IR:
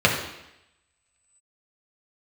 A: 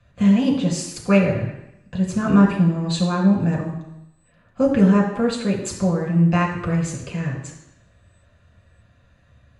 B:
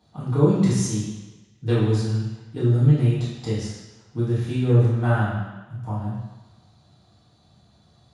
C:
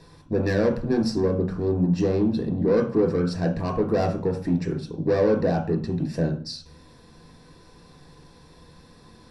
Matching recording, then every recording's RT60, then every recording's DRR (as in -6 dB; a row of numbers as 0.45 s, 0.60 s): A; 0.85 s, 1.2 s, 0.45 s; -2.0 dB, -10.5 dB, 1.5 dB